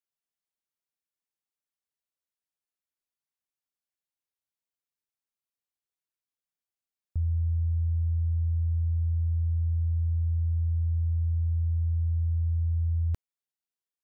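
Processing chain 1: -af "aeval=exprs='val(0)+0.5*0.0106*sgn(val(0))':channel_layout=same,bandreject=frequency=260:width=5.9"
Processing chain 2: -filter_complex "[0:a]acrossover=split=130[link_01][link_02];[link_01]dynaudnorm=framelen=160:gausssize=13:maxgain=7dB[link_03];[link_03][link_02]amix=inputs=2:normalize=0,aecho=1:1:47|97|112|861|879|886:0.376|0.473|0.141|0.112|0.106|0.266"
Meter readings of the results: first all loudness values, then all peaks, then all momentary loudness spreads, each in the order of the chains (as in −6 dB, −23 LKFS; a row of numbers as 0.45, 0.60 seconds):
−28.0, −18.0 LKFS; −22.0, −12.0 dBFS; 19, 7 LU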